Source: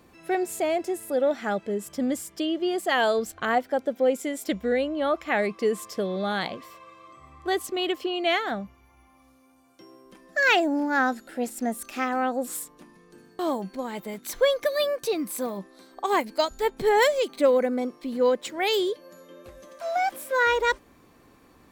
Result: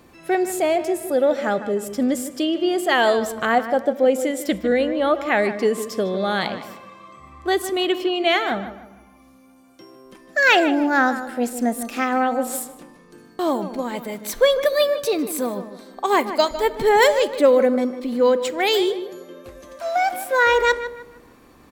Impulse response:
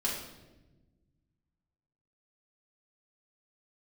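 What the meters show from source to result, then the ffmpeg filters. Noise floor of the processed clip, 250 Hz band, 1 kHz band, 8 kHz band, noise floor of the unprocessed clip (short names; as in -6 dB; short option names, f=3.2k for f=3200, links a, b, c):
-51 dBFS, +6.0 dB, +5.5 dB, +5.0 dB, -57 dBFS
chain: -filter_complex "[0:a]asplit=2[a][b];[b]adelay=153,lowpass=f=2.4k:p=1,volume=-11dB,asplit=2[c][d];[d]adelay=153,lowpass=f=2.4k:p=1,volume=0.36,asplit=2[e][f];[f]adelay=153,lowpass=f=2.4k:p=1,volume=0.36,asplit=2[g][h];[h]adelay=153,lowpass=f=2.4k:p=1,volume=0.36[i];[a][c][e][g][i]amix=inputs=5:normalize=0,asplit=2[j][k];[1:a]atrim=start_sample=2205[l];[k][l]afir=irnorm=-1:irlink=0,volume=-21dB[m];[j][m]amix=inputs=2:normalize=0,volume=4.5dB"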